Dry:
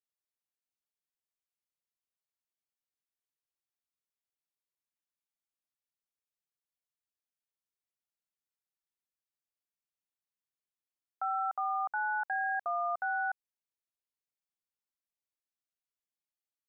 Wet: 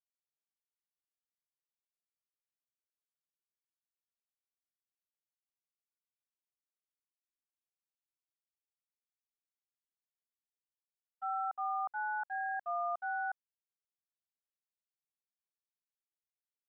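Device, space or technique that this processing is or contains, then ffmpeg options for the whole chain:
hearing-loss simulation: -af "lowpass=1.6k,agate=range=-33dB:threshold=-30dB:ratio=3:detection=peak"

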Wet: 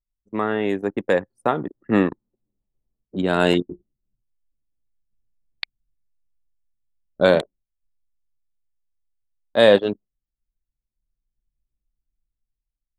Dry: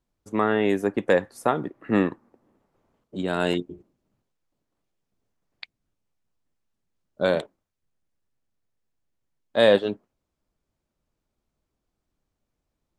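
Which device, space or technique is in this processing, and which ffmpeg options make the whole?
voice memo with heavy noise removal: -af "anlmdn=3.98,dynaudnorm=f=620:g=5:m=15dB,volume=-1dB"

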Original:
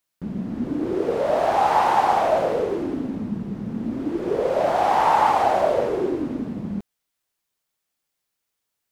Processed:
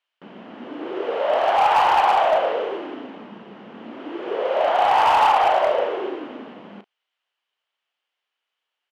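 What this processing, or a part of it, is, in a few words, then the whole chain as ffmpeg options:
megaphone: -filter_complex "[0:a]highpass=630,lowpass=2.6k,equalizer=f=3k:t=o:w=0.34:g=11,asoftclip=type=hard:threshold=-16dB,asplit=2[a][b];[b]adelay=35,volume=-11dB[c];[a][c]amix=inputs=2:normalize=0,volume=4dB"

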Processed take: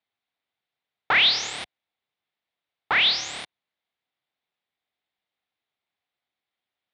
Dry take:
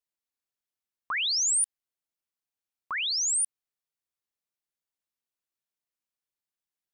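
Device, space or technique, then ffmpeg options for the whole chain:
ring modulator pedal into a guitar cabinet: -af "aeval=exprs='val(0)*sgn(sin(2*PI*220*n/s))':c=same,highpass=75,equalizer=f=740:t=q:w=4:g=7,equalizer=f=2.1k:t=q:w=4:g=5,equalizer=f=3.6k:t=q:w=4:g=6,lowpass=f=3.9k:w=0.5412,lowpass=f=3.9k:w=1.3066,volume=8dB"

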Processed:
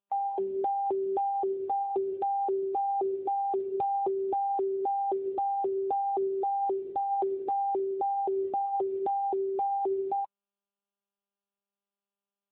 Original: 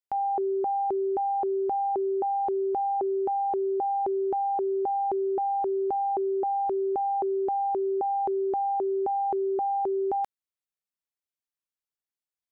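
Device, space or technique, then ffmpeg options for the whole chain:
mobile call with aggressive noise cancelling: -filter_complex "[0:a]asettb=1/sr,asplit=3[a][b][c];[a]atrim=end=1.884[d];[b]atrim=start=1.88:end=2.35,asetpts=PTS-STARTPTS,afade=t=in:d=0.004:c=qsin,afade=t=out:st=0.466:d=0.004:c=qsin,lowshelf=f=130:g=6[e];[c]atrim=start=2.346[f];[d][e]acrossfade=d=0.004:c1=hsin:c2=qsin[g];[g][f]acrossfade=d=0.004:c1=qsin:c2=hsin,highpass=f=110:w=0.5412,highpass=f=110:w=1.3066,afftdn=nr=16:nf=-35" -ar 8000 -c:a libopencore_amrnb -b:a 10200

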